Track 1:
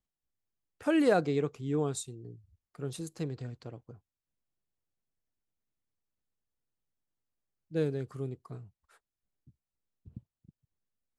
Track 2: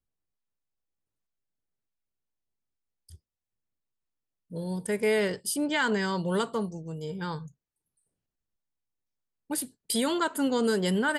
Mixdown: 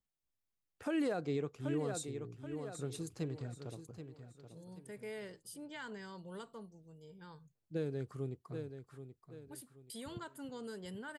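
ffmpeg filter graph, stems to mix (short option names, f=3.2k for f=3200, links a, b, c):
-filter_complex "[0:a]volume=-3.5dB,asplit=2[a][b];[b]volume=-10.5dB[c];[1:a]volume=-20dB[d];[c]aecho=0:1:779|1558|2337|3116|3895:1|0.34|0.116|0.0393|0.0134[e];[a][d][e]amix=inputs=3:normalize=0,alimiter=level_in=3dB:limit=-24dB:level=0:latency=1:release=197,volume=-3dB"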